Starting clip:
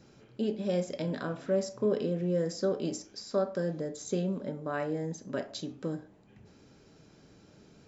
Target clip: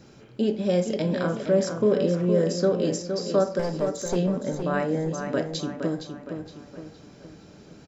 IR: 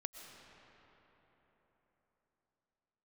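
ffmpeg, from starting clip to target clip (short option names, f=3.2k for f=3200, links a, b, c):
-filter_complex "[0:a]asettb=1/sr,asplit=3[a][b][c];[a]atrim=end=3.594[d];[b]atrim=start=3.59:end=4.16,asetpts=PTS-STARTPTS,afade=t=in:d=0.004:c=qsin,afade=t=out:st=0.566:d=0.004:c=qsin,aeval=exprs='clip(val(0),-1,0.015)':c=same[e];[c]atrim=start=4.156[f];[d][e]acrossfade=d=0.004:c1=hsin:c2=qsin[g];[g][f]acrossfade=d=0.004:c1=qsin:c2=hsin,asplit=2[h][i];[i]adelay=465,lowpass=f=4.8k:p=1,volume=-7dB,asplit=2[j][k];[k]adelay=465,lowpass=f=4.8k:p=1,volume=0.47,asplit=2[l][m];[m]adelay=465,lowpass=f=4.8k:p=1,volume=0.47,asplit=2[n][o];[o]adelay=465,lowpass=f=4.8k:p=1,volume=0.47,asplit=2[p][q];[q]adelay=465,lowpass=f=4.8k:p=1,volume=0.47,asplit=2[r][s];[s]adelay=465,lowpass=f=4.8k:p=1,volume=0.47[t];[h][j][l][n][p][r][t]amix=inputs=7:normalize=0,volume=7dB"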